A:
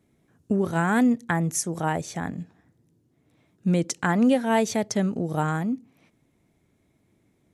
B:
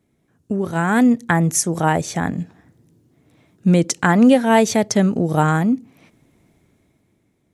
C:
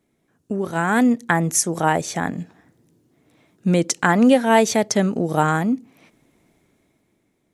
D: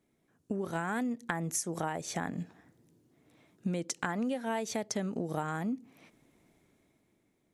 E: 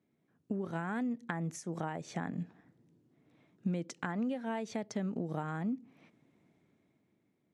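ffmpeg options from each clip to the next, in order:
-af "dynaudnorm=f=110:g=17:m=3.55"
-af "equalizer=f=86:w=0.6:g=-8.5"
-af "acompressor=threshold=0.0631:ratio=10,volume=0.501"
-af "highpass=130,lowpass=8000,bass=f=250:g=7,treble=f=4000:g=-7,volume=0.596"

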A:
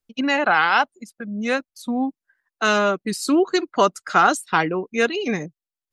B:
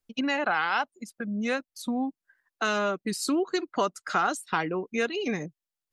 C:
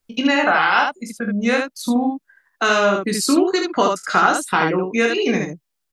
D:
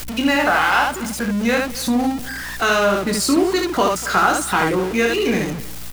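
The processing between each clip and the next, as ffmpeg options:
-af "acompressor=threshold=0.0316:ratio=2"
-af "aecho=1:1:21|44|75:0.501|0.282|0.668,volume=2.51"
-af "aeval=exprs='val(0)+0.5*0.0841*sgn(val(0))':c=same,aeval=exprs='val(0)+0.0158*(sin(2*PI*60*n/s)+sin(2*PI*2*60*n/s)/2+sin(2*PI*3*60*n/s)/3+sin(2*PI*4*60*n/s)/4+sin(2*PI*5*60*n/s)/5)':c=same,aecho=1:1:244:0.112,volume=0.794"

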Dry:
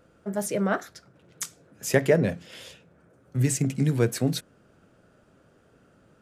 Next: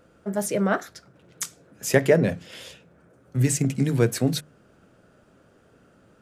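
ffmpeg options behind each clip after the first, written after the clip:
-af "bandreject=f=50:t=h:w=6,bandreject=f=100:t=h:w=6,bandreject=f=150:t=h:w=6,volume=1.33"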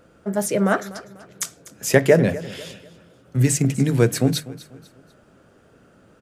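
-af "aecho=1:1:246|492|738:0.133|0.0493|0.0183,volume=1.5"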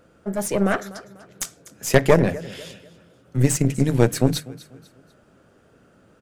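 -af "aeval=exprs='0.891*(cos(1*acos(clip(val(0)/0.891,-1,1)))-cos(1*PI/2))+0.2*(cos(4*acos(clip(val(0)/0.891,-1,1)))-cos(4*PI/2))':c=same,volume=0.794"

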